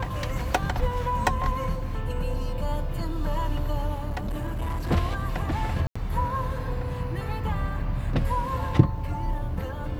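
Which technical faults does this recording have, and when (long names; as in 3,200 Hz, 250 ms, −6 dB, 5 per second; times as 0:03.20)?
0:04.09–0:04.92: clipping −25.5 dBFS
0:05.87–0:05.96: drop-out 85 ms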